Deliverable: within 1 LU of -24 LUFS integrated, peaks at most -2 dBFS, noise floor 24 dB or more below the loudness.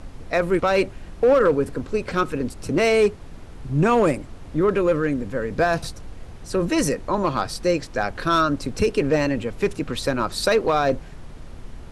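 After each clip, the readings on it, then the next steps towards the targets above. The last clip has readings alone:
clipped samples 0.5%; clipping level -11.0 dBFS; noise floor -40 dBFS; noise floor target -46 dBFS; loudness -22.0 LUFS; peak level -11.0 dBFS; loudness target -24.0 LUFS
-> clip repair -11 dBFS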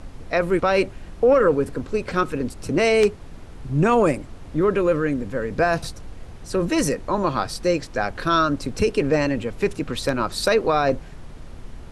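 clipped samples 0.0%; noise floor -40 dBFS; noise floor target -46 dBFS
-> noise print and reduce 6 dB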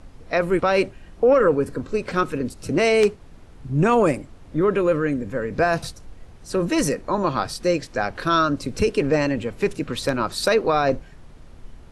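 noise floor -45 dBFS; noise floor target -46 dBFS
-> noise print and reduce 6 dB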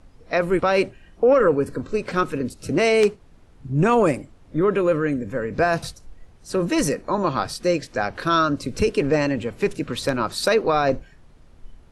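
noise floor -50 dBFS; loudness -22.0 LUFS; peak level -2.5 dBFS; loudness target -24.0 LUFS
-> trim -2 dB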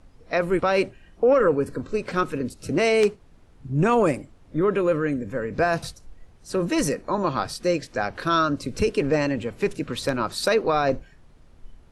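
loudness -24.0 LUFS; peak level -4.5 dBFS; noise floor -52 dBFS

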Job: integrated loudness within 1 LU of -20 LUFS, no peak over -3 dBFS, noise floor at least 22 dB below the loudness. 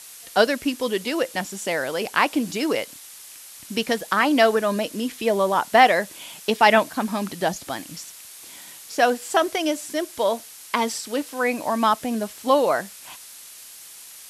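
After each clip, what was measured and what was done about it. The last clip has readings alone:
noise floor -43 dBFS; noise floor target -45 dBFS; loudness -22.5 LUFS; peak level -1.5 dBFS; loudness target -20.0 LUFS
-> noise print and reduce 6 dB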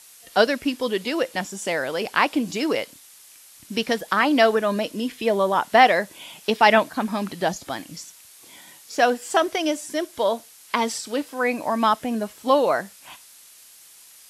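noise floor -49 dBFS; loudness -22.5 LUFS; peak level -1.5 dBFS; loudness target -20.0 LUFS
-> trim +2.5 dB; peak limiter -3 dBFS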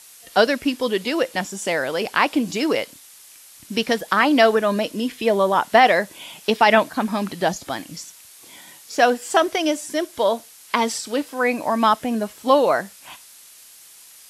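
loudness -20.5 LUFS; peak level -3.0 dBFS; noise floor -46 dBFS

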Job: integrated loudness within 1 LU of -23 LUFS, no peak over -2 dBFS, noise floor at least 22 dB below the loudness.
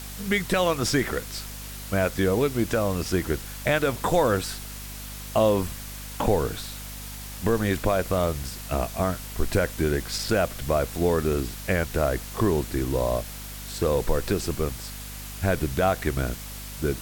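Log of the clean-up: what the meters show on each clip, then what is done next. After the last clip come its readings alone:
hum 50 Hz; highest harmonic 250 Hz; hum level -38 dBFS; noise floor -38 dBFS; noise floor target -48 dBFS; loudness -26.0 LUFS; peak level -9.5 dBFS; loudness target -23.0 LUFS
-> de-hum 50 Hz, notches 5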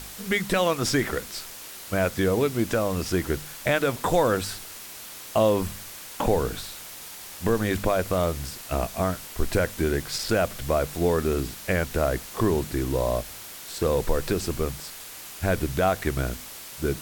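hum not found; noise floor -41 dBFS; noise floor target -48 dBFS
-> noise reduction 7 dB, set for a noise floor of -41 dBFS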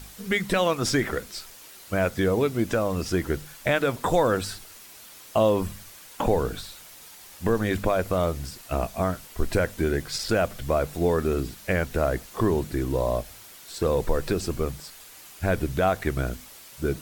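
noise floor -47 dBFS; noise floor target -48 dBFS
-> noise reduction 6 dB, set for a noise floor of -47 dBFS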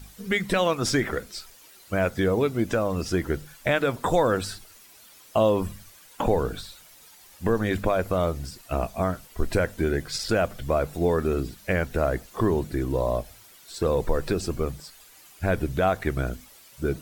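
noise floor -52 dBFS; loudness -26.0 LUFS; peak level -10.0 dBFS; loudness target -23.0 LUFS
-> trim +3 dB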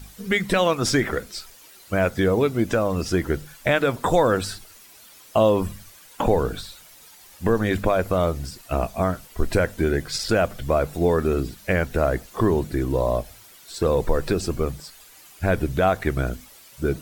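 loudness -23.0 LUFS; peak level -7.0 dBFS; noise floor -49 dBFS

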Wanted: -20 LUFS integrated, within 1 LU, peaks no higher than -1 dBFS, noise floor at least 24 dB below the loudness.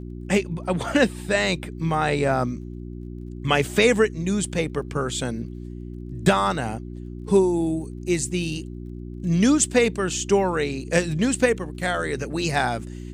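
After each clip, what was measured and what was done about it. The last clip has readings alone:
tick rate 25 per s; hum 60 Hz; highest harmonic 360 Hz; hum level -33 dBFS; loudness -23.0 LUFS; peak level -5.5 dBFS; loudness target -20.0 LUFS
-> de-click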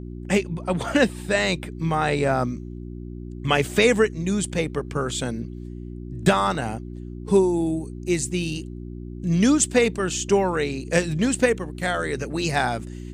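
tick rate 0 per s; hum 60 Hz; highest harmonic 360 Hz; hum level -33 dBFS
-> de-hum 60 Hz, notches 6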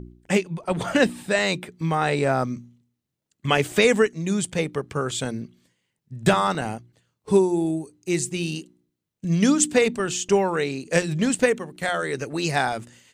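hum not found; loudness -23.0 LUFS; peak level -6.0 dBFS; loudness target -20.0 LUFS
-> trim +3 dB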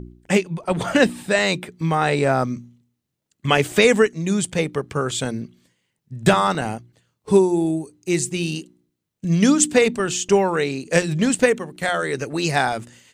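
loudness -20.0 LUFS; peak level -3.0 dBFS; noise floor -79 dBFS

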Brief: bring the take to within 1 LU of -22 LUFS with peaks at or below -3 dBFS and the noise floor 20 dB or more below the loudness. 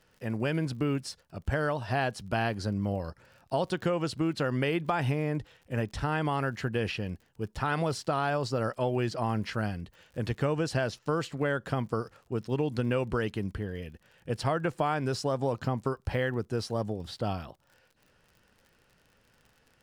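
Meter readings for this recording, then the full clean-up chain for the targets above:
tick rate 45 per s; loudness -31.5 LUFS; peak level -13.5 dBFS; loudness target -22.0 LUFS
-> de-click; trim +9.5 dB

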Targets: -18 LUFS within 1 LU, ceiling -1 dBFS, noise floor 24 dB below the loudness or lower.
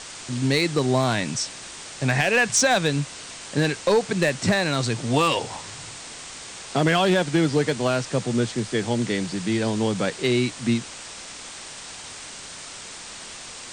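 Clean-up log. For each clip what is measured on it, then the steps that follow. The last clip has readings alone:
clipped samples 0.3%; clipping level -12.0 dBFS; noise floor -39 dBFS; noise floor target -47 dBFS; loudness -22.5 LUFS; peak level -12.0 dBFS; loudness target -18.0 LUFS
-> clip repair -12 dBFS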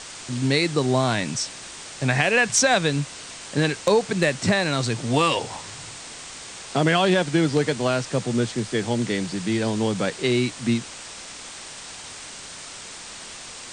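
clipped samples 0.0%; noise floor -39 dBFS; noise floor target -47 dBFS
-> noise reduction 8 dB, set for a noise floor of -39 dBFS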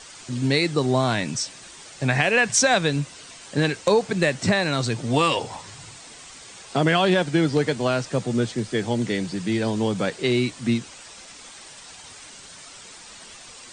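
noise floor -44 dBFS; noise floor target -47 dBFS
-> noise reduction 6 dB, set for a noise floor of -44 dBFS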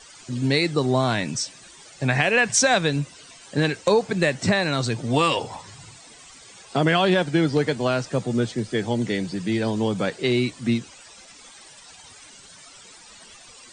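noise floor -47 dBFS; loudness -22.5 LUFS; peak level -3.0 dBFS; loudness target -18.0 LUFS
-> trim +4.5 dB; peak limiter -1 dBFS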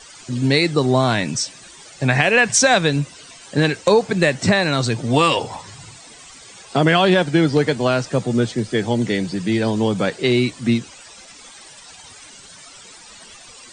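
loudness -18.0 LUFS; peak level -1.0 dBFS; noise floor -43 dBFS

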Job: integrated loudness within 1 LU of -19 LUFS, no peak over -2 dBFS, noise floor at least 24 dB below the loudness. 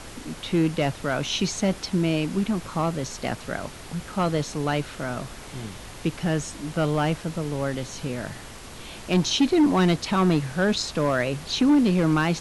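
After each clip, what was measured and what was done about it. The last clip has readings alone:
clipped samples 1.2%; clipping level -14.0 dBFS; noise floor -41 dBFS; noise floor target -49 dBFS; loudness -24.5 LUFS; peak level -14.0 dBFS; loudness target -19.0 LUFS
-> clip repair -14 dBFS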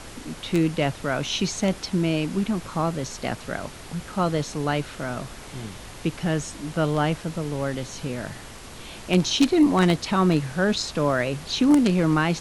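clipped samples 0.0%; noise floor -41 dBFS; noise floor target -48 dBFS
-> noise print and reduce 7 dB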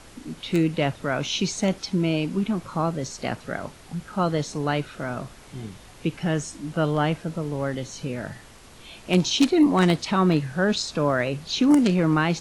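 noise floor -47 dBFS; noise floor target -48 dBFS
-> noise print and reduce 6 dB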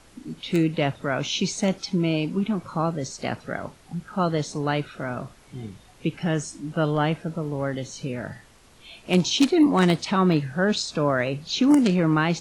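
noise floor -53 dBFS; loudness -24.0 LUFS; peak level -5.0 dBFS; loudness target -19.0 LUFS
-> trim +5 dB; peak limiter -2 dBFS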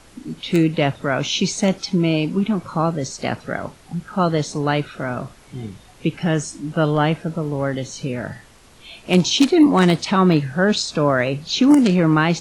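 loudness -19.5 LUFS; peak level -2.0 dBFS; noise floor -48 dBFS

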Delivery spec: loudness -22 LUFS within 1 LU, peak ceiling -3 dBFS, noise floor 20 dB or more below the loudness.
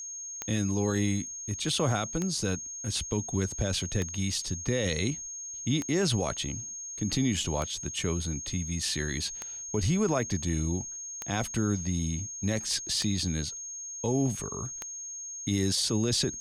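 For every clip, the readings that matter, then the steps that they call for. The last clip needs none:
clicks found 9; steady tone 6.5 kHz; tone level -37 dBFS; loudness -30.0 LUFS; peak level -14.0 dBFS; loudness target -22.0 LUFS
-> de-click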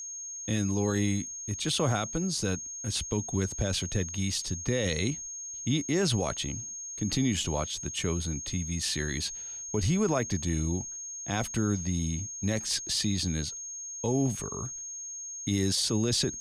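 clicks found 0; steady tone 6.5 kHz; tone level -37 dBFS
-> band-stop 6.5 kHz, Q 30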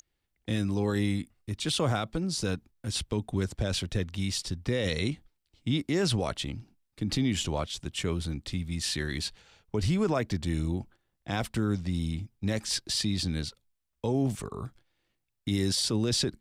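steady tone not found; loudness -30.5 LUFS; peak level -17.5 dBFS; loudness target -22.0 LUFS
-> trim +8.5 dB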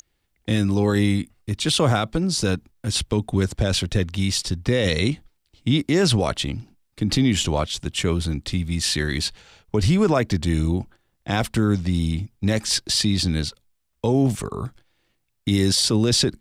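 loudness -22.0 LUFS; peak level -9.0 dBFS; noise floor -71 dBFS

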